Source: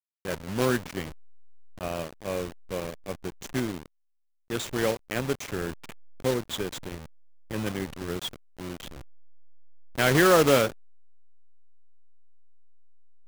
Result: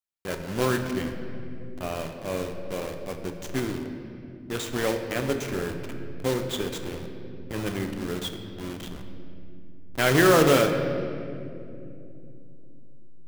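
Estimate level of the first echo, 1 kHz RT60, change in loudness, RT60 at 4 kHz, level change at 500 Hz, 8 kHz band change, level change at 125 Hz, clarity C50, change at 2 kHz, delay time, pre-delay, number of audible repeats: no echo audible, 2.1 s, +0.5 dB, 1.6 s, +1.5 dB, +0.5 dB, +2.5 dB, 7.0 dB, +1.0 dB, no echo audible, 3 ms, no echo audible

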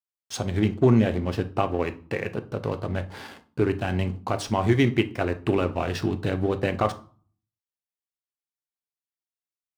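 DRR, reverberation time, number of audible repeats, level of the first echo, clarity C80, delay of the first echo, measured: 8.5 dB, 0.45 s, no echo audible, no echo audible, 21.0 dB, no echo audible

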